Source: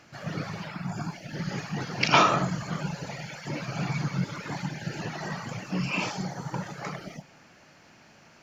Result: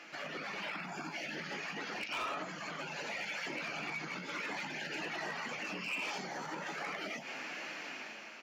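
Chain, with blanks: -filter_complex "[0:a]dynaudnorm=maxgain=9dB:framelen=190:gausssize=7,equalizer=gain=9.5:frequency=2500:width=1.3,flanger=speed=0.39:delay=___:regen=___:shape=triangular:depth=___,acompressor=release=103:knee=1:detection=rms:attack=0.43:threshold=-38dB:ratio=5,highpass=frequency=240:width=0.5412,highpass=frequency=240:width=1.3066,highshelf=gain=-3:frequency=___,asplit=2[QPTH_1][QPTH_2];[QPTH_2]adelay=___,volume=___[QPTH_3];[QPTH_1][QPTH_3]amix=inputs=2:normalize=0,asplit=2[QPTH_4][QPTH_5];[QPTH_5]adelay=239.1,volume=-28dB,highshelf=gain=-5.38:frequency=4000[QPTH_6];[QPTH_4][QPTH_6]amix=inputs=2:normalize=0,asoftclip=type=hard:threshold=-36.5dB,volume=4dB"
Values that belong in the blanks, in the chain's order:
5.7, -39, 8, 3600, 19, -12.5dB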